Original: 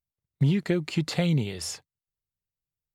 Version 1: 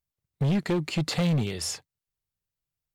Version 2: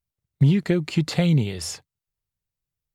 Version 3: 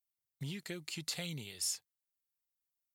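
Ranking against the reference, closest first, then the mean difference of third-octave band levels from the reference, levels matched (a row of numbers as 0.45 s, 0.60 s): 2, 1, 3; 1.5 dB, 3.5 dB, 7.0 dB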